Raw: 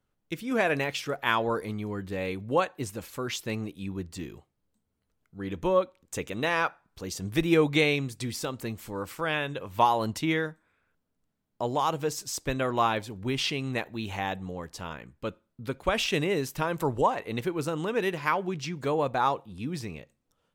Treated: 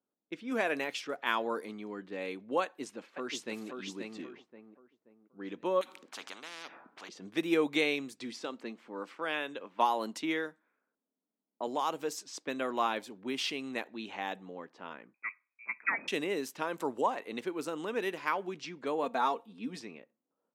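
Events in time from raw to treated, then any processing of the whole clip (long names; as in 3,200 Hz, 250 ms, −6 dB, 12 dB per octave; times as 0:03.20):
0:02.63–0:03.68: delay throw 530 ms, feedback 35%, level −4.5 dB
0:05.81–0:07.09: every bin compressed towards the loudest bin 10 to 1
0:08.43–0:11.67: high-pass filter 150 Hz 24 dB per octave
0:15.14–0:16.08: voice inversion scrambler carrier 2,500 Hz
0:19.03–0:19.80: comb filter 4.4 ms
whole clip: low-pass that shuts in the quiet parts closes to 870 Hz, open at −26 dBFS; Chebyshev high-pass filter 240 Hz, order 3; level −5 dB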